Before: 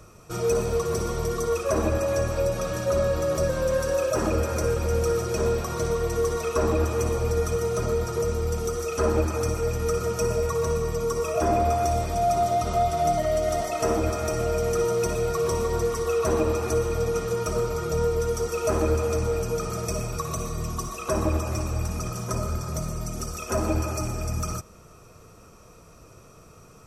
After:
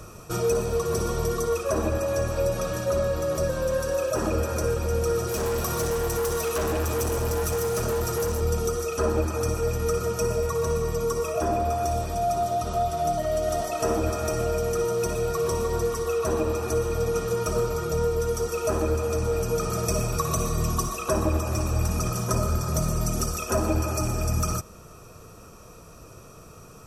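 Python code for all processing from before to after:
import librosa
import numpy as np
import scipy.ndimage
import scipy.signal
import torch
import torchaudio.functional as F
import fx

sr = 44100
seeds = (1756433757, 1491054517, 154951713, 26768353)

y = fx.chain(x, sr, fx.high_shelf(hz=8100.0, db=10.5),
    fx.overload_stage(gain_db=26.0), at=(5.27, 8.41))
y = fx.peak_eq(y, sr, hz=12000.0, db=4.0, octaves=0.51)
y = fx.notch(y, sr, hz=2100.0, q=11.0)
y = fx.rider(y, sr, range_db=10, speed_s=0.5)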